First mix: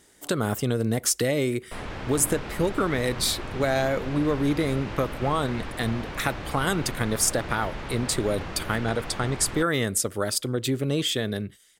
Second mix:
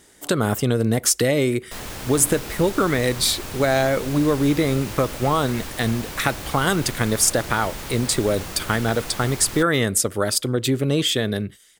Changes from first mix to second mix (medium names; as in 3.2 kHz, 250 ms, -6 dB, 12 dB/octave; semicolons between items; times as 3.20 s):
speech +5.0 dB; background: remove low-pass 2.6 kHz 12 dB/octave